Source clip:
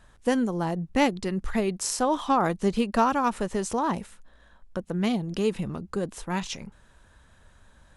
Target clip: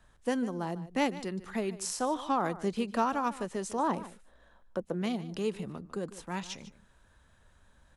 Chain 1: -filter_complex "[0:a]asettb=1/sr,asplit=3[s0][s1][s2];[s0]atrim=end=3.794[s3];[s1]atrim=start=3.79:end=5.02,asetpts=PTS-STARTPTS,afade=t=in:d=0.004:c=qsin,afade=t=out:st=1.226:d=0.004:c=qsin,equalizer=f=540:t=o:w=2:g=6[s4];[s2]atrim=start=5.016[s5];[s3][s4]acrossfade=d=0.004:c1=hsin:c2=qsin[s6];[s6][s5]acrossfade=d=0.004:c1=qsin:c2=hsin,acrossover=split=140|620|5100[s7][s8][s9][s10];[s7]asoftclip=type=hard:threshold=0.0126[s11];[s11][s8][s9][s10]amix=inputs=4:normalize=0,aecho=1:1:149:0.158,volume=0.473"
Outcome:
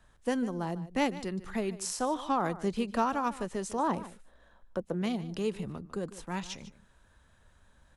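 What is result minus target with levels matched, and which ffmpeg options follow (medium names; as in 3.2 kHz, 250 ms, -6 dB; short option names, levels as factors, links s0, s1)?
hard clipper: distortion -5 dB
-filter_complex "[0:a]asettb=1/sr,asplit=3[s0][s1][s2];[s0]atrim=end=3.794[s3];[s1]atrim=start=3.79:end=5.02,asetpts=PTS-STARTPTS,afade=t=in:d=0.004:c=qsin,afade=t=out:st=1.226:d=0.004:c=qsin,equalizer=f=540:t=o:w=2:g=6[s4];[s2]atrim=start=5.016[s5];[s3][s4]acrossfade=d=0.004:c1=hsin:c2=qsin[s6];[s6][s5]acrossfade=d=0.004:c1=qsin:c2=hsin,acrossover=split=140|620|5100[s7][s8][s9][s10];[s7]asoftclip=type=hard:threshold=0.00335[s11];[s11][s8][s9][s10]amix=inputs=4:normalize=0,aecho=1:1:149:0.158,volume=0.473"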